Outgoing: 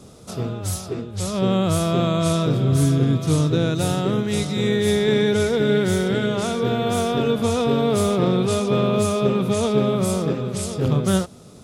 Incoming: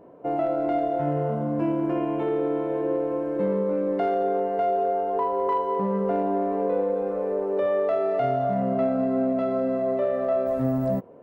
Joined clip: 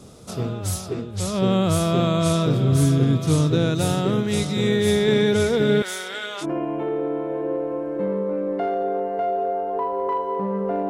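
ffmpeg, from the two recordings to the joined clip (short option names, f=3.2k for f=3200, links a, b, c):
-filter_complex "[0:a]asettb=1/sr,asplit=3[a][b][c];[a]atrim=end=5.824[d];[b]atrim=start=5.82:end=6.46,asetpts=PTS-STARTPTS,afade=t=in:d=0.004:c=qsin,afade=t=out:st=0.636:d=0.004:c=qsin,highpass=980[e];[c]atrim=start=6.456[f];[d][e]acrossfade=d=0.004:c1=hsin:c2=qsin[g];[g][f]acrossfade=d=0.004:c1=qsin:c2=hsin,apad=whole_dur=10.89,atrim=end=10.89,atrim=end=6.46,asetpts=PTS-STARTPTS[h];[1:a]atrim=start=1.8:end=6.29,asetpts=PTS-STARTPTS[i];[h][i]acrossfade=d=0.06:c1=tri:c2=tri"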